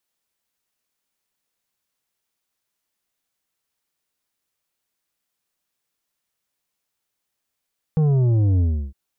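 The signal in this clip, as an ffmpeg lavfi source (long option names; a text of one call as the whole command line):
ffmpeg -f lavfi -i "aevalsrc='0.168*clip((0.96-t)/0.33,0,1)*tanh(2.51*sin(2*PI*160*0.96/log(65/160)*(exp(log(65/160)*t/0.96)-1)))/tanh(2.51)':duration=0.96:sample_rate=44100" out.wav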